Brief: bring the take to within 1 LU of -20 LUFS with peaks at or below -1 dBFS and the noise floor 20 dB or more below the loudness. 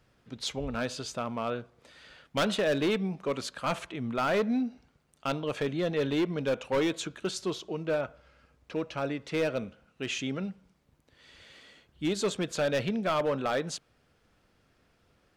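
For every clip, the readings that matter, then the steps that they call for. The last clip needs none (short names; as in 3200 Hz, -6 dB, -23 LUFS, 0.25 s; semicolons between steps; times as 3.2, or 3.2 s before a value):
clipped 1.6%; flat tops at -22.5 dBFS; loudness -31.5 LUFS; peak -22.5 dBFS; loudness target -20.0 LUFS
-> clip repair -22.5 dBFS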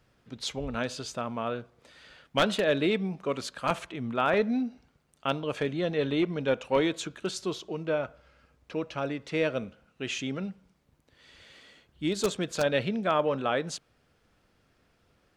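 clipped 0.0%; loudness -30.0 LUFS; peak -13.5 dBFS; loudness target -20.0 LUFS
-> gain +10 dB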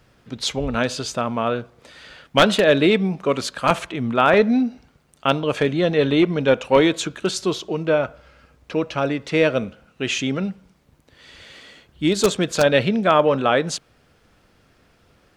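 loudness -20.0 LUFS; peak -3.5 dBFS; noise floor -59 dBFS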